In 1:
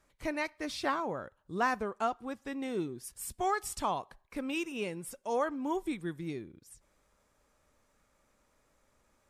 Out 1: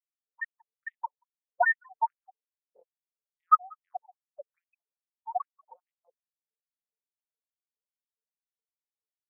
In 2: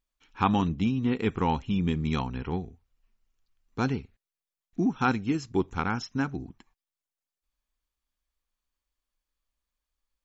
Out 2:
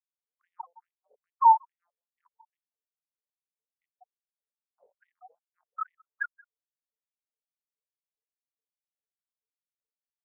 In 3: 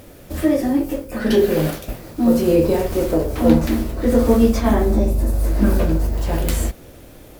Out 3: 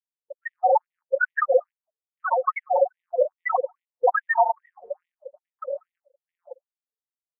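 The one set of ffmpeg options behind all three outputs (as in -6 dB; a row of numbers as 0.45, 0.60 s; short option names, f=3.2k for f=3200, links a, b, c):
-filter_complex "[0:a]acrossover=split=120[a][b];[a]acompressor=mode=upward:threshold=-30dB:ratio=2.5[c];[b]aeval=exprs='(mod(3.76*val(0)+1,2)-1)/3.76':c=same[d];[c][d]amix=inputs=2:normalize=0,bandreject=f=50:t=h:w=6,bandreject=f=100:t=h:w=6,bandreject=f=150:t=h:w=6,aecho=1:1:5.5:0.77,asplit=2[e][f];[f]highpass=f=720:p=1,volume=23dB,asoftclip=type=tanh:threshold=-4dB[g];[e][g]amix=inputs=2:normalize=0,lowpass=f=4.8k:p=1,volume=-6dB,afftfilt=real='re*gte(hypot(re,im),1.26)':imag='im*gte(hypot(re,im),1.26)':win_size=1024:overlap=0.75,asplit=2[h][i];[i]adelay=186.6,volume=-29dB,highshelf=f=4k:g=-4.2[j];[h][j]amix=inputs=2:normalize=0,aeval=exprs='val(0)+0.01*(sin(2*PI*50*n/s)+sin(2*PI*2*50*n/s)/2+sin(2*PI*3*50*n/s)/3+sin(2*PI*4*50*n/s)/4+sin(2*PI*5*50*n/s)/5)':c=same,highpass=f=82:w=0.5412,highpass=f=82:w=1.3066,afftfilt=real='re*between(b*sr/1024,630*pow(2700/630,0.5+0.5*sin(2*PI*2.4*pts/sr))/1.41,630*pow(2700/630,0.5+0.5*sin(2*PI*2.4*pts/sr))*1.41)':imag='im*between(b*sr/1024,630*pow(2700/630,0.5+0.5*sin(2*PI*2.4*pts/sr))/1.41,630*pow(2700/630,0.5+0.5*sin(2*PI*2.4*pts/sr))*1.41)':win_size=1024:overlap=0.75"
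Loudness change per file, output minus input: +6.0, +2.5, -6.0 LU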